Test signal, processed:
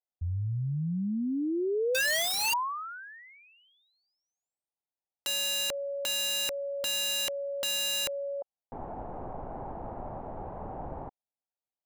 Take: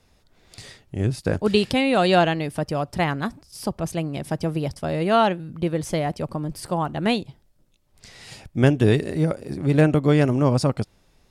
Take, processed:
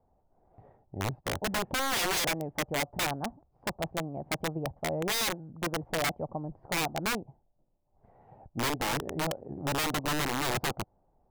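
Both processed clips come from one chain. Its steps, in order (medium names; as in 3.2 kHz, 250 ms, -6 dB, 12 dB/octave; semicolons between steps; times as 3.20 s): four-pole ladder low-pass 890 Hz, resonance 60%; integer overflow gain 24 dB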